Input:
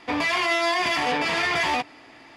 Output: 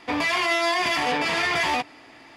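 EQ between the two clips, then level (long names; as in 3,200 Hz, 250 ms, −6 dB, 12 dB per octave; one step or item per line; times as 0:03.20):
high-shelf EQ 11,000 Hz +6 dB
0.0 dB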